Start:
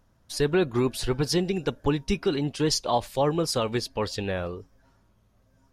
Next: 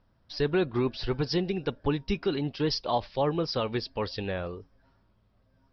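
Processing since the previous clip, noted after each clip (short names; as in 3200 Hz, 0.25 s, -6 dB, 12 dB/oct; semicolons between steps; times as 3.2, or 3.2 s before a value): steep low-pass 5400 Hz 96 dB/oct; gain -3 dB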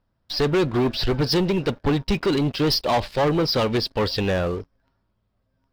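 sample leveller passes 3; gain +1 dB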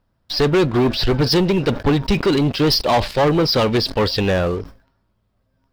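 sustainer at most 140 dB/s; gain +4.5 dB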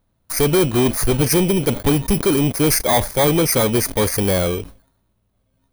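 FFT order left unsorted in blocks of 16 samples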